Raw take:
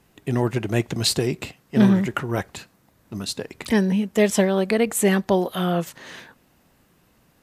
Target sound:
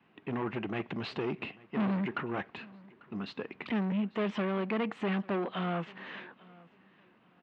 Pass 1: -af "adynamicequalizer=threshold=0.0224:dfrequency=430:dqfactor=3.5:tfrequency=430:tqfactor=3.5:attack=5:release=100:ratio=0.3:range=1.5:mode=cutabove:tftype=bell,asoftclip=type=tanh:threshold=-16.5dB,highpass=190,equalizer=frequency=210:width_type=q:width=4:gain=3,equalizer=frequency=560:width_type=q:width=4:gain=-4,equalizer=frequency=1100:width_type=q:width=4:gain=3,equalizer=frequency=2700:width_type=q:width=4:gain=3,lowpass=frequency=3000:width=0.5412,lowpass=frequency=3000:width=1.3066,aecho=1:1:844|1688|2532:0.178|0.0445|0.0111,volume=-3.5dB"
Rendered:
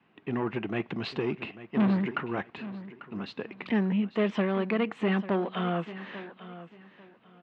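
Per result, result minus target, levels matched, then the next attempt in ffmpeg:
echo-to-direct +8 dB; soft clipping: distortion −6 dB
-af "adynamicequalizer=threshold=0.0224:dfrequency=430:dqfactor=3.5:tfrequency=430:tqfactor=3.5:attack=5:release=100:ratio=0.3:range=1.5:mode=cutabove:tftype=bell,asoftclip=type=tanh:threshold=-16.5dB,highpass=190,equalizer=frequency=210:width_type=q:width=4:gain=3,equalizer=frequency=560:width_type=q:width=4:gain=-4,equalizer=frequency=1100:width_type=q:width=4:gain=3,equalizer=frequency=2700:width_type=q:width=4:gain=3,lowpass=frequency=3000:width=0.5412,lowpass=frequency=3000:width=1.3066,aecho=1:1:844|1688:0.0708|0.0177,volume=-3.5dB"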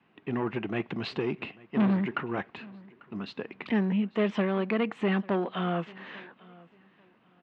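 soft clipping: distortion −6 dB
-af "adynamicequalizer=threshold=0.0224:dfrequency=430:dqfactor=3.5:tfrequency=430:tqfactor=3.5:attack=5:release=100:ratio=0.3:range=1.5:mode=cutabove:tftype=bell,asoftclip=type=tanh:threshold=-24dB,highpass=190,equalizer=frequency=210:width_type=q:width=4:gain=3,equalizer=frequency=560:width_type=q:width=4:gain=-4,equalizer=frequency=1100:width_type=q:width=4:gain=3,equalizer=frequency=2700:width_type=q:width=4:gain=3,lowpass=frequency=3000:width=0.5412,lowpass=frequency=3000:width=1.3066,aecho=1:1:844|1688:0.0708|0.0177,volume=-3.5dB"

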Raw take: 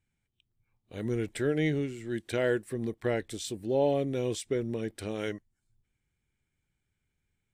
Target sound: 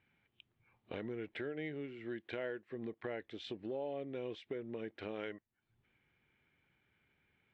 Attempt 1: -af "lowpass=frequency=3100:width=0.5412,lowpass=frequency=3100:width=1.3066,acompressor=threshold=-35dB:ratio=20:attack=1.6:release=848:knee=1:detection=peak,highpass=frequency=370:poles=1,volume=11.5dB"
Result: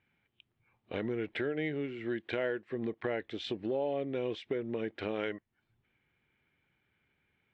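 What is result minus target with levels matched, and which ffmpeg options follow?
downward compressor: peak gain reduction −7.5 dB
-af "lowpass=frequency=3100:width=0.5412,lowpass=frequency=3100:width=1.3066,acompressor=threshold=-43dB:ratio=20:attack=1.6:release=848:knee=1:detection=peak,highpass=frequency=370:poles=1,volume=11.5dB"

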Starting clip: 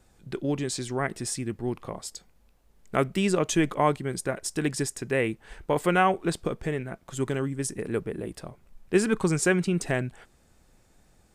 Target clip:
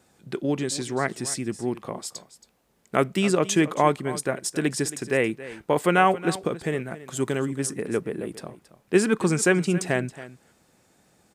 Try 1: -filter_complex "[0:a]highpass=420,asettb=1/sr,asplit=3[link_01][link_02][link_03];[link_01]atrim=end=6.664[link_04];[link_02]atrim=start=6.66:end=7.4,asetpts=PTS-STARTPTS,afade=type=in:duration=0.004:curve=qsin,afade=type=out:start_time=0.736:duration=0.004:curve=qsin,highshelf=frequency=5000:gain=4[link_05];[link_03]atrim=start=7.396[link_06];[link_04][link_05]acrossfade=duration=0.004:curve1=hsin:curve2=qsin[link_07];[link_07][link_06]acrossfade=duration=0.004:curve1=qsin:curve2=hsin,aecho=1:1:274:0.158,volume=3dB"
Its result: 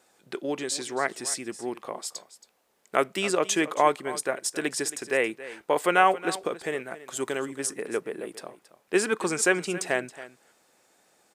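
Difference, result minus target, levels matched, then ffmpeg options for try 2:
125 Hz band −12.0 dB
-filter_complex "[0:a]highpass=140,asettb=1/sr,asplit=3[link_01][link_02][link_03];[link_01]atrim=end=6.664[link_04];[link_02]atrim=start=6.66:end=7.4,asetpts=PTS-STARTPTS,afade=type=in:duration=0.004:curve=qsin,afade=type=out:start_time=0.736:duration=0.004:curve=qsin,highshelf=frequency=5000:gain=4[link_05];[link_03]atrim=start=7.396[link_06];[link_04][link_05]acrossfade=duration=0.004:curve1=hsin:curve2=qsin[link_07];[link_07][link_06]acrossfade=duration=0.004:curve1=qsin:curve2=hsin,aecho=1:1:274:0.158,volume=3dB"

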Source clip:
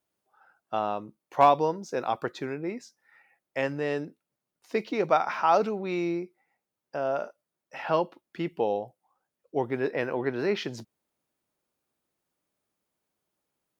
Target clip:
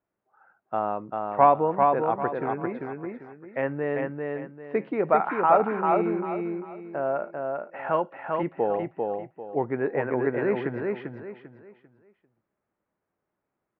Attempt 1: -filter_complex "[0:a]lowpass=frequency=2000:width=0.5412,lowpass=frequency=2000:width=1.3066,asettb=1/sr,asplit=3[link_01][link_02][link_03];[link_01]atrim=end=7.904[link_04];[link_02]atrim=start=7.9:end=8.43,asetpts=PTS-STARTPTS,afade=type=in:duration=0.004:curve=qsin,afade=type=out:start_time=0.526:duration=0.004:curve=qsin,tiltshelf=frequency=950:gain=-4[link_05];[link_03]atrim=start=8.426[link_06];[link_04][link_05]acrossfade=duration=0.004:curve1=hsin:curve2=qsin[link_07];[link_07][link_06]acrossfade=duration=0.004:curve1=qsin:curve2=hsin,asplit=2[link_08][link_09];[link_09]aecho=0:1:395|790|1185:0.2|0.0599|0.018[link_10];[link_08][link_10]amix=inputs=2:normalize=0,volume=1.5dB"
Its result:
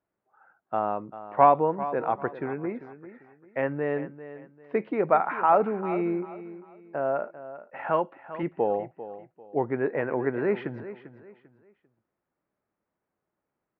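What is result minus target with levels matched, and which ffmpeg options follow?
echo-to-direct −10.5 dB
-filter_complex "[0:a]lowpass=frequency=2000:width=0.5412,lowpass=frequency=2000:width=1.3066,asettb=1/sr,asplit=3[link_01][link_02][link_03];[link_01]atrim=end=7.904[link_04];[link_02]atrim=start=7.9:end=8.43,asetpts=PTS-STARTPTS,afade=type=in:duration=0.004:curve=qsin,afade=type=out:start_time=0.526:duration=0.004:curve=qsin,tiltshelf=frequency=950:gain=-4[link_05];[link_03]atrim=start=8.426[link_06];[link_04][link_05]acrossfade=duration=0.004:curve1=hsin:curve2=qsin[link_07];[link_07][link_06]acrossfade=duration=0.004:curve1=qsin:curve2=hsin,asplit=2[link_08][link_09];[link_09]aecho=0:1:395|790|1185|1580:0.668|0.201|0.0602|0.018[link_10];[link_08][link_10]amix=inputs=2:normalize=0,volume=1.5dB"

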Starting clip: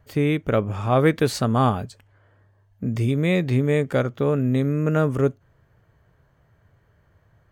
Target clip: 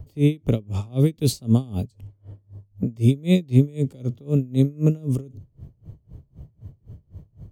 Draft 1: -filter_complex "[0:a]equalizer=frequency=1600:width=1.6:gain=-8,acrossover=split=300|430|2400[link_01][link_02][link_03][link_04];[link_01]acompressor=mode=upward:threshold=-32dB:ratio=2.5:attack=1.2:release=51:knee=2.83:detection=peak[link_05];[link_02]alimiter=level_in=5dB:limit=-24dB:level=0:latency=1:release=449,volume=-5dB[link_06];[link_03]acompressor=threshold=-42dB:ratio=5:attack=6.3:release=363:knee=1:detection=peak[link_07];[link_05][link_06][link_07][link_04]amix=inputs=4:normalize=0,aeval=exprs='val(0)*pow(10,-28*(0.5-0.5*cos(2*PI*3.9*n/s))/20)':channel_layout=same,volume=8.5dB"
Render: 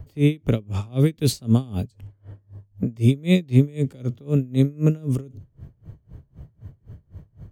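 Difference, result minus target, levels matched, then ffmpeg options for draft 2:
2,000 Hz band +4.5 dB
-filter_complex "[0:a]equalizer=frequency=1600:width=1.6:gain=-19.5,acrossover=split=300|430|2400[link_01][link_02][link_03][link_04];[link_01]acompressor=mode=upward:threshold=-32dB:ratio=2.5:attack=1.2:release=51:knee=2.83:detection=peak[link_05];[link_02]alimiter=level_in=5dB:limit=-24dB:level=0:latency=1:release=449,volume=-5dB[link_06];[link_03]acompressor=threshold=-42dB:ratio=5:attack=6.3:release=363:knee=1:detection=peak[link_07];[link_05][link_06][link_07][link_04]amix=inputs=4:normalize=0,aeval=exprs='val(0)*pow(10,-28*(0.5-0.5*cos(2*PI*3.9*n/s))/20)':channel_layout=same,volume=8.5dB"

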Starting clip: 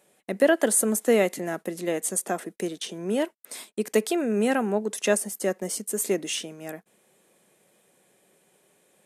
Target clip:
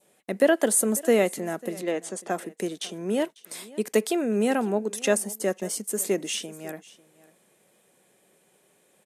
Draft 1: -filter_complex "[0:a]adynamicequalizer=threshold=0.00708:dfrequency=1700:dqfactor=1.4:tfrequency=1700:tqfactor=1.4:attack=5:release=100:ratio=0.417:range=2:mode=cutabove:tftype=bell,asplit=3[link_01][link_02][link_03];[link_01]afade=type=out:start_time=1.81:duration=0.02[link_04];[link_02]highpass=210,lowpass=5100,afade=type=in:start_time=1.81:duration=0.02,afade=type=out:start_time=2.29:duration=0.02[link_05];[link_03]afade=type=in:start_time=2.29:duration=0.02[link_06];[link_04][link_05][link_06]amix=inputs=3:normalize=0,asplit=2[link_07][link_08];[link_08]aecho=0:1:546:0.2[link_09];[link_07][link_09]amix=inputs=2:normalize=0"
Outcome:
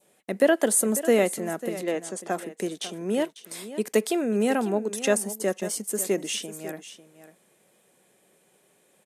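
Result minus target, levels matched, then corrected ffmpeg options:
echo-to-direct +7 dB
-filter_complex "[0:a]adynamicequalizer=threshold=0.00708:dfrequency=1700:dqfactor=1.4:tfrequency=1700:tqfactor=1.4:attack=5:release=100:ratio=0.417:range=2:mode=cutabove:tftype=bell,asplit=3[link_01][link_02][link_03];[link_01]afade=type=out:start_time=1.81:duration=0.02[link_04];[link_02]highpass=210,lowpass=5100,afade=type=in:start_time=1.81:duration=0.02,afade=type=out:start_time=2.29:duration=0.02[link_05];[link_03]afade=type=in:start_time=2.29:duration=0.02[link_06];[link_04][link_05][link_06]amix=inputs=3:normalize=0,asplit=2[link_07][link_08];[link_08]aecho=0:1:546:0.0891[link_09];[link_07][link_09]amix=inputs=2:normalize=0"

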